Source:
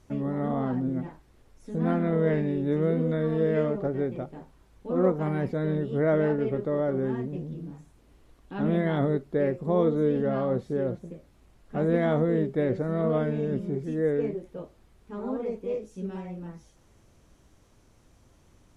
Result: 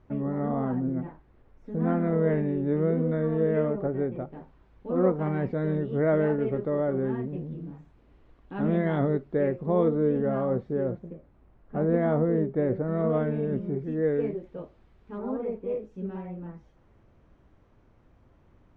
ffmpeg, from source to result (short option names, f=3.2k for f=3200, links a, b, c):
-af "asetnsamples=n=441:p=0,asendcmd='4.32 lowpass f 2600;9.88 lowpass f 1900;11.13 lowpass f 1500;12.88 lowpass f 2200;14.03 lowpass f 3100;15.18 lowpass f 2000',lowpass=1.9k"